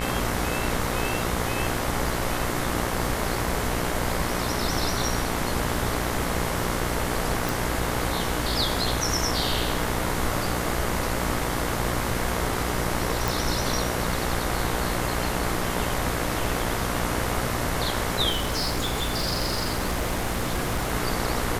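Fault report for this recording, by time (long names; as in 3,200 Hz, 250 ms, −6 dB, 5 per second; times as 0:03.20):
mains buzz 60 Hz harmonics 37 −30 dBFS
0:07.49: click
0:13.28: click
0:18.30–0:20.92: clipping −21.5 dBFS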